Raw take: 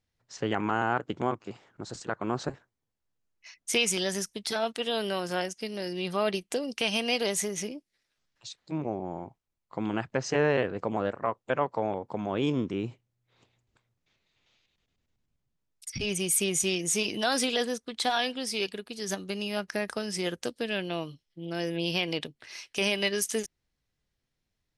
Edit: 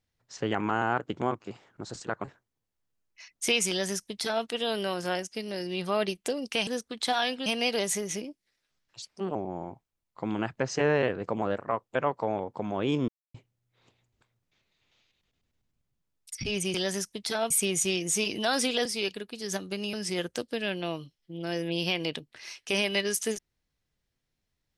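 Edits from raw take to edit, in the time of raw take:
0:02.24–0:02.50: remove
0:03.95–0:04.71: duplicate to 0:16.29
0:08.49–0:08.90: play speed 123%
0:12.63–0:12.89: silence
0:17.64–0:18.43: move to 0:06.93
0:19.51–0:20.01: remove

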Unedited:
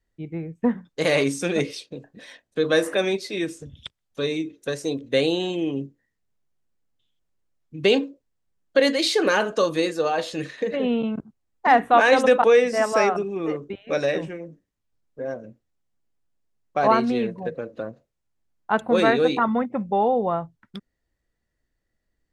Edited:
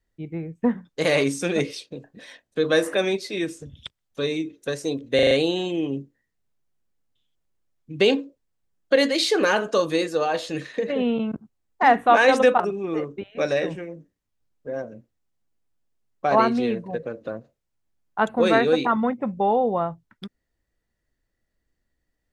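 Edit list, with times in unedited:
0:05.15: stutter 0.04 s, 5 plays
0:12.44–0:13.12: remove

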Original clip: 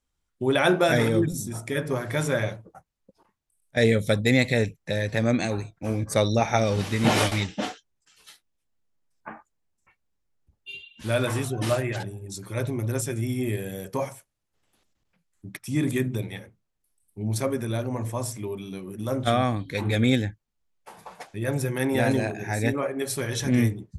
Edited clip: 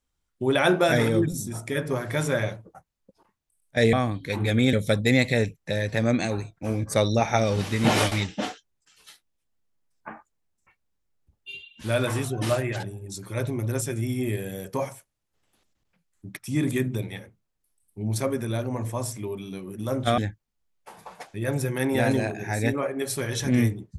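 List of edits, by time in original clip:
0:19.38–0:20.18: move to 0:03.93

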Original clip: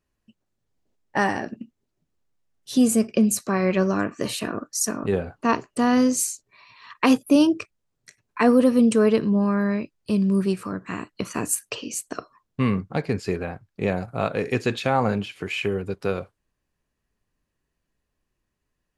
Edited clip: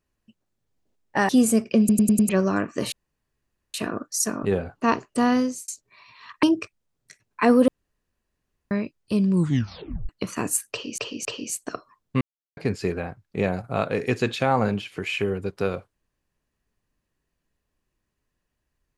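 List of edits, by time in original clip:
0:01.29–0:02.72: remove
0:03.22: stutter in place 0.10 s, 5 plays
0:04.35: splice in room tone 0.82 s
0:05.87–0:06.29: fade out
0:07.04–0:07.41: remove
0:08.66–0:09.69: fill with room tone
0:10.29: tape stop 0.78 s
0:11.69–0:11.96: repeat, 3 plays
0:12.65–0:13.01: silence

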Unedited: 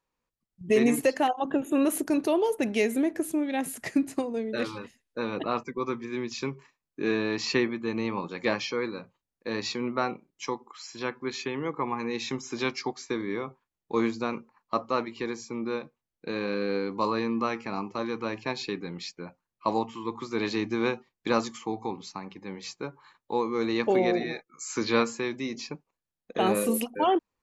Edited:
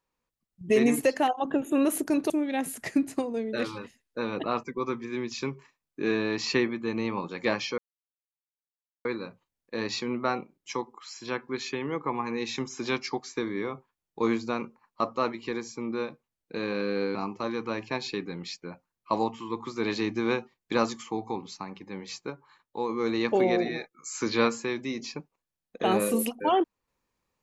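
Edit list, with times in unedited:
0:02.30–0:03.30: remove
0:08.78: splice in silence 1.27 s
0:16.88–0:17.70: remove
0:22.85–0:23.44: clip gain −3.5 dB

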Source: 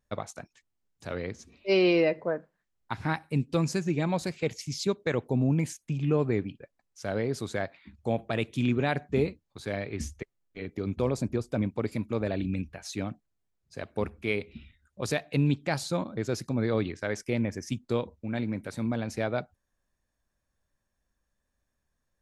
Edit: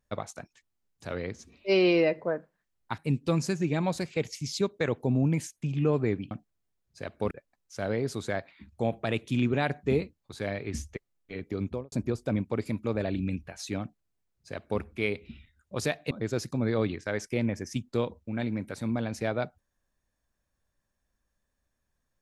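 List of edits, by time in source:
0:02.98–0:03.24: remove
0:10.87–0:11.18: fade out and dull
0:13.07–0:14.07: duplicate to 0:06.57
0:15.37–0:16.07: remove

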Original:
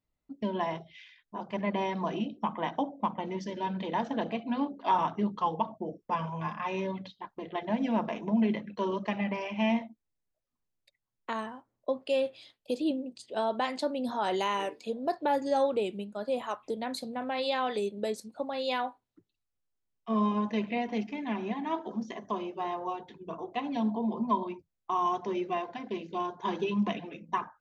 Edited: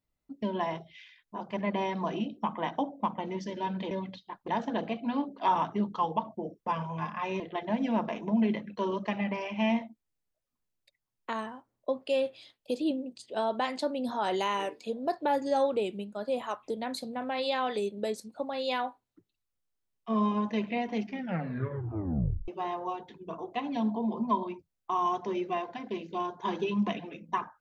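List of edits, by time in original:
0:06.83–0:07.40: move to 0:03.91
0:21.04: tape stop 1.44 s

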